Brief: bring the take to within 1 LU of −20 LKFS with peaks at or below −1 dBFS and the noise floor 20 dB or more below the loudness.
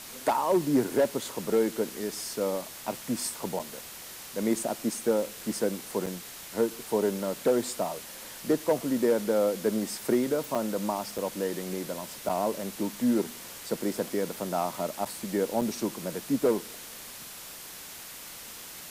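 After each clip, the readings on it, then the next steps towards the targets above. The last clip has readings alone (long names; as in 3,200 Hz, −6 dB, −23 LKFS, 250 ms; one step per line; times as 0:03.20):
number of dropouts 7; longest dropout 5.6 ms; background noise floor −44 dBFS; target noise floor −50 dBFS; integrated loudness −29.5 LKFS; sample peak −13.5 dBFS; target loudness −20.0 LKFS
→ repair the gap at 0:03.59/0:06.06/0:10.55/0:11.18/0:12.29/0:15.05/0:15.61, 5.6 ms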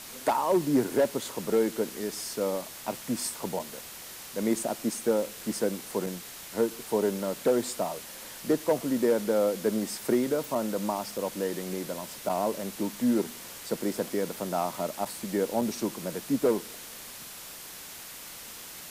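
number of dropouts 0; background noise floor −44 dBFS; target noise floor −50 dBFS
→ broadband denoise 6 dB, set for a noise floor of −44 dBFS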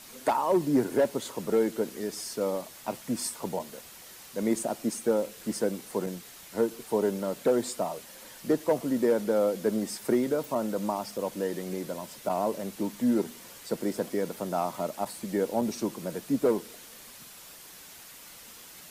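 background noise floor −49 dBFS; target noise floor −50 dBFS
→ broadband denoise 6 dB, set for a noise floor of −49 dBFS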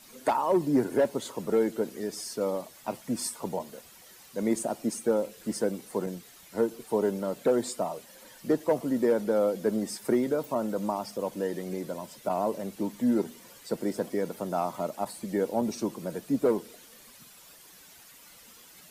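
background noise floor −53 dBFS; integrated loudness −30.0 LKFS; sample peak −14.0 dBFS; target loudness −20.0 LKFS
→ level +10 dB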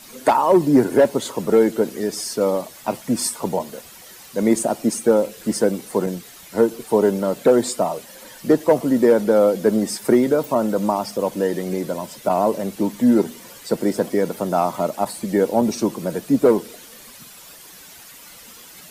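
integrated loudness −20.0 LKFS; sample peak −4.0 dBFS; background noise floor −43 dBFS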